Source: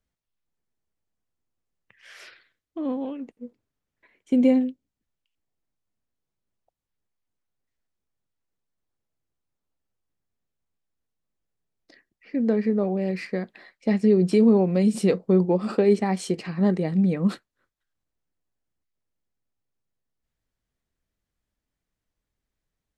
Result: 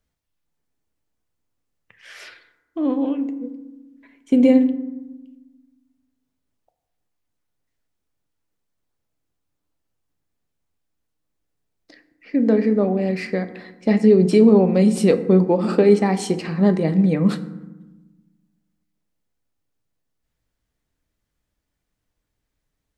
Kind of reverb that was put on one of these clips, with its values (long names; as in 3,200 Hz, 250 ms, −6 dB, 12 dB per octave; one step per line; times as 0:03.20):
feedback delay network reverb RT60 1.1 s, low-frequency decay 1.55×, high-frequency decay 0.45×, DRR 9.5 dB
level +5 dB